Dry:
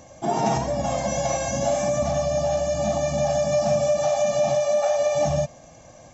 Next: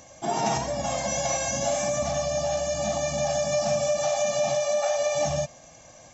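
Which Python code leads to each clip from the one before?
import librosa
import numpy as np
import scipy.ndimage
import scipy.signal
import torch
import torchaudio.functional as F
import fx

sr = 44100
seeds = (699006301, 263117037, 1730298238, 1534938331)

y = fx.tilt_shelf(x, sr, db=-4.5, hz=1100.0)
y = y * 10.0 ** (-1.5 / 20.0)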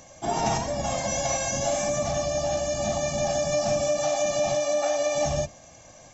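y = fx.octave_divider(x, sr, octaves=1, level_db=-4.0)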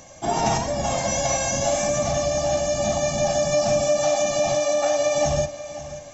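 y = fx.echo_feedback(x, sr, ms=537, feedback_pct=39, wet_db=-14.5)
y = y * 10.0 ** (3.5 / 20.0)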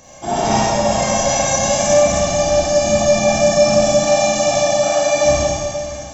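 y = fx.rev_schroeder(x, sr, rt60_s=1.8, comb_ms=29, drr_db=-7.5)
y = y * 10.0 ** (-1.0 / 20.0)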